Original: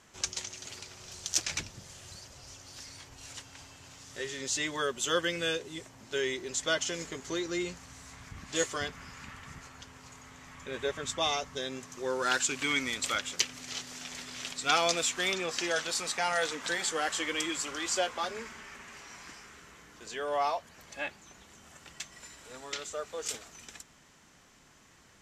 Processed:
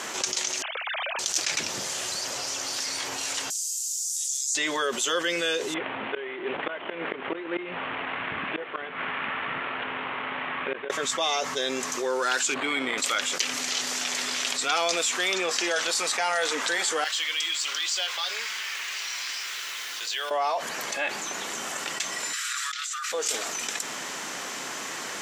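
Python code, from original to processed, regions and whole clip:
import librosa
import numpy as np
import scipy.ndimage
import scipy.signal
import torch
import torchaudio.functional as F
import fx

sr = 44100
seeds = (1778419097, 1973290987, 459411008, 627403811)

y = fx.chain(x, sr, fx.sine_speech(),
    fx.over_compress(threshold_db=-50.0, ratio=-0.5), at=(0.62, 1.19))
y = fx.chain(y, sr, fx.cheby2_highpass(hz=1200.0, order=4, stop_db=80),
    fx.env_flatten(amount_pct=50), at=(3.5, 4.55))
y = fx.chain(y, sr, fx.cvsd(bps=16000),
    fx.gate_flip(shuts_db=-26.0, range_db=-27), at=(5.74, 10.9))
y = fx.chain(y, sr, fx.resample_bad(factor=8, down='none', up='hold'),
    fx.spacing_loss(db_at_10k=25), at=(12.54, 12.98))
y = fx.chain(y, sr, fx.bandpass_q(hz=3800.0, q=1.5),
    fx.quant_companded(bits=6), at=(17.04, 20.31))
y = fx.chain(y, sr, fx.cheby1_highpass(hz=1200.0, order=6),
    fx.over_compress(threshold_db=-52.0, ratio=-1.0), at=(22.33, 23.12))
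y = scipy.signal.sosfilt(scipy.signal.butter(2, 350.0, 'highpass', fs=sr, output='sos'), y)
y = fx.env_flatten(y, sr, amount_pct=70)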